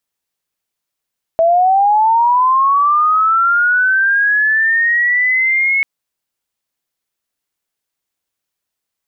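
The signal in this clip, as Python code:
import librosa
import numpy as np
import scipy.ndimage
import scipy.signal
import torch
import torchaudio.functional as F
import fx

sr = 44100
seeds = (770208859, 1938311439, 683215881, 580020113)

y = fx.chirp(sr, length_s=4.44, from_hz=650.0, to_hz=2200.0, law='linear', from_db=-8.0, to_db=-11.0)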